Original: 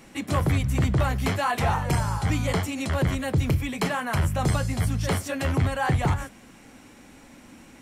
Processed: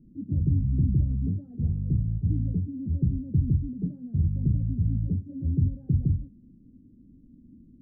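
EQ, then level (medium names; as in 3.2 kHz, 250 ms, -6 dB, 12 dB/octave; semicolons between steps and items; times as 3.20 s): inverse Chebyshev low-pass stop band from 900 Hz, stop band 60 dB; 0.0 dB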